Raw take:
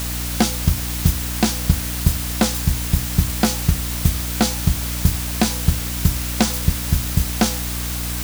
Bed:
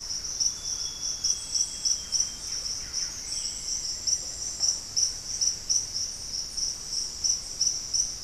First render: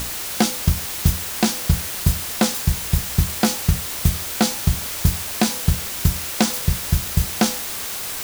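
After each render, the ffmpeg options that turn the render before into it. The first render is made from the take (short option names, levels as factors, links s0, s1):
-af "bandreject=f=60:t=h:w=6,bandreject=f=120:t=h:w=6,bandreject=f=180:t=h:w=6,bandreject=f=240:t=h:w=6,bandreject=f=300:t=h:w=6"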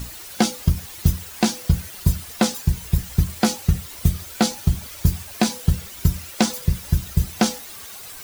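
-af "afftdn=nr=12:nf=-29"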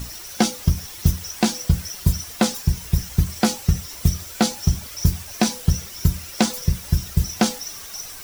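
-filter_complex "[1:a]volume=0.355[s0];[0:a][s0]amix=inputs=2:normalize=0"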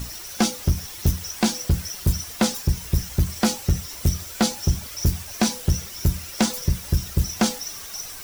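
-af "asoftclip=type=hard:threshold=0.237"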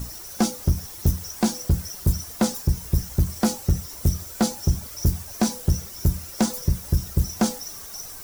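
-af "equalizer=f=2800:t=o:w=1.8:g=-9"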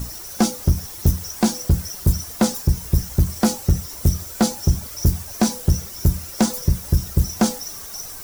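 -af "volume=1.5"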